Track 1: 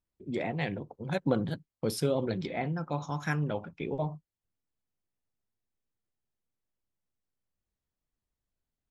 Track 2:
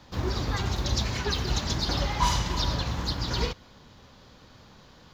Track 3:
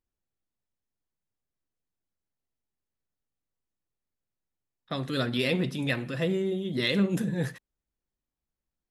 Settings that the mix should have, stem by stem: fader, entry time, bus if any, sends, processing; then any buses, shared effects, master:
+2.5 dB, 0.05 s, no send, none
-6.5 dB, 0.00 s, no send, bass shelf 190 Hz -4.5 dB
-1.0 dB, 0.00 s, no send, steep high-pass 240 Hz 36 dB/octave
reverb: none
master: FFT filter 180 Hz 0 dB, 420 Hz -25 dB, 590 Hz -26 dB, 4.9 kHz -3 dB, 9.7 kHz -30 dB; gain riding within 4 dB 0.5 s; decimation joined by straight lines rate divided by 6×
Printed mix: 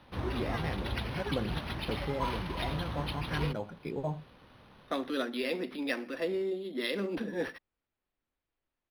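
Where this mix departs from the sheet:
stem 1 +2.5 dB -> -6.0 dB; master: missing FFT filter 180 Hz 0 dB, 420 Hz -25 dB, 590 Hz -26 dB, 4.9 kHz -3 dB, 9.7 kHz -30 dB

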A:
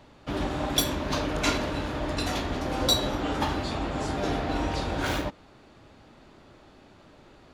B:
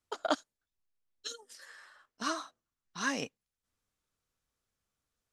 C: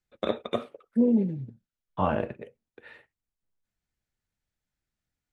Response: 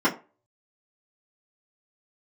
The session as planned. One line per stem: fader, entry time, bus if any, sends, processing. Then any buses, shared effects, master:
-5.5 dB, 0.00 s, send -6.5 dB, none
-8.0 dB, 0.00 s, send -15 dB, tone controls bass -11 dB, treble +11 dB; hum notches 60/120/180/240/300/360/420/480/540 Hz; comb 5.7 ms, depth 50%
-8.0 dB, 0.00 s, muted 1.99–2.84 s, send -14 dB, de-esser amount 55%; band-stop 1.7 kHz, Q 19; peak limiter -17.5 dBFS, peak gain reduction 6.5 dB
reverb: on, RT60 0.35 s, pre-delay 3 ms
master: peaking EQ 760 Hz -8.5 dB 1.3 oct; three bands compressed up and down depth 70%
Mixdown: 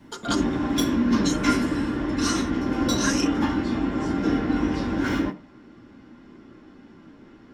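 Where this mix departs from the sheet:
stem B -8.0 dB -> +3.0 dB; master: missing three bands compressed up and down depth 70%

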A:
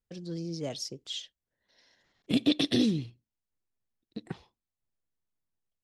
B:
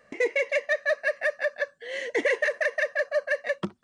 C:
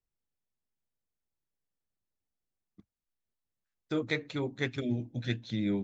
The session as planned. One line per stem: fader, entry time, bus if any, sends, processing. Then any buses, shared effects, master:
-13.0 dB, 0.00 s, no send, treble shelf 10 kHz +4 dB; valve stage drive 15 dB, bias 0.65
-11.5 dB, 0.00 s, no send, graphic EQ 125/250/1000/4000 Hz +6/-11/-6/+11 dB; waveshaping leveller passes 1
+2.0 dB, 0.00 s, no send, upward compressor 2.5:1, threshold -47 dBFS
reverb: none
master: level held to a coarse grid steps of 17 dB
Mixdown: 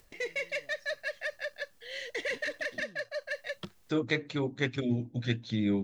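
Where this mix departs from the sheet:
stem A -13.0 dB -> -23.5 dB; master: missing level held to a coarse grid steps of 17 dB

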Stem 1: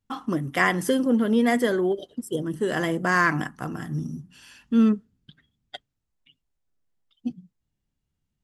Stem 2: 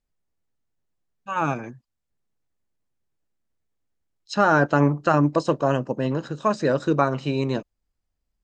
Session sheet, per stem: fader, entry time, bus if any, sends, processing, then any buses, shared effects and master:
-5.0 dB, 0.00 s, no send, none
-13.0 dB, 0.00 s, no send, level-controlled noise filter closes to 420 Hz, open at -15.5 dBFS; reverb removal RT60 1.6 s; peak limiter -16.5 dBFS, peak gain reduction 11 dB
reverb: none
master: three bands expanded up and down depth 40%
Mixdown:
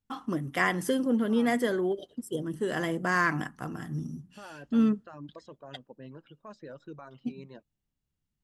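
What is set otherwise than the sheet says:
stem 2 -13.0 dB -> -19.0 dB; master: missing three bands expanded up and down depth 40%

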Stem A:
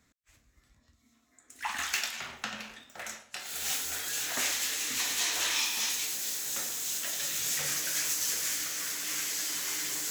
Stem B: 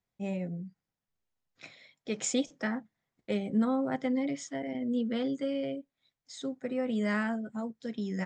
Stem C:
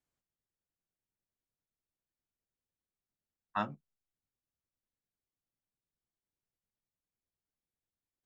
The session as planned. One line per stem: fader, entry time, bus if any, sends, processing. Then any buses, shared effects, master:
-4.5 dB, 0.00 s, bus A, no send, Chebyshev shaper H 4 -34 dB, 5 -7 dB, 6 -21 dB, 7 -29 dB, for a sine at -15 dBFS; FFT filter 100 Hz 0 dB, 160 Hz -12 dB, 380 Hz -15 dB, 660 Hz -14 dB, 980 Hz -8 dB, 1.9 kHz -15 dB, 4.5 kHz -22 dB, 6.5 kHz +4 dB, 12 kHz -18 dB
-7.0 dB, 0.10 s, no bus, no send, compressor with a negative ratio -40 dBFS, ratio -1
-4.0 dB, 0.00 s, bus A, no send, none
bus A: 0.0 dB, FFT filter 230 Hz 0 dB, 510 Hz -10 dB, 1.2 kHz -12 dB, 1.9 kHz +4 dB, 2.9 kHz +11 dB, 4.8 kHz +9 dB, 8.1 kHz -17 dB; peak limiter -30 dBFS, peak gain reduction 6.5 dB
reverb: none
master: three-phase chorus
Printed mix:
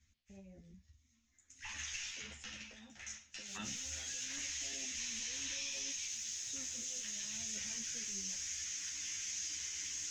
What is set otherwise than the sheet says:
stem B -7.0 dB -> -16.0 dB; stem C -4.0 dB -> +4.0 dB

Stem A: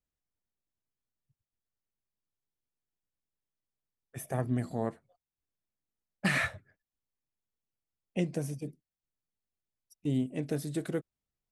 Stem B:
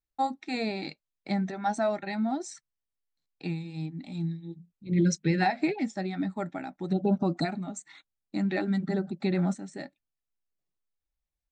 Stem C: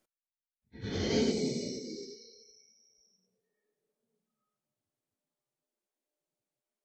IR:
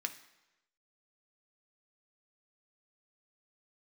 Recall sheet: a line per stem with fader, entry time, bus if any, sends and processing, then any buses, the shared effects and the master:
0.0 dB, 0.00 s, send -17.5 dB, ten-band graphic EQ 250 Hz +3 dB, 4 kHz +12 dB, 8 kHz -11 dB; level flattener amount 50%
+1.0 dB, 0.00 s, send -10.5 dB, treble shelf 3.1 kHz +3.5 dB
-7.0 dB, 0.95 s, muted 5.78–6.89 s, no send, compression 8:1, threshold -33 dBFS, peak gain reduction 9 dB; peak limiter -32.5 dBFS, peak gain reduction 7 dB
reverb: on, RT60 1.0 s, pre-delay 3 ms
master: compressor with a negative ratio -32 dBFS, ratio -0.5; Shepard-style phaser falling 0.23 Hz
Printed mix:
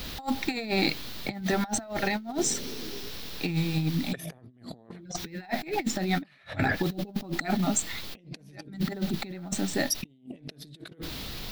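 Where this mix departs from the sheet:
stem A 0.0 dB -> +9.5 dB; master: missing Shepard-style phaser falling 0.23 Hz

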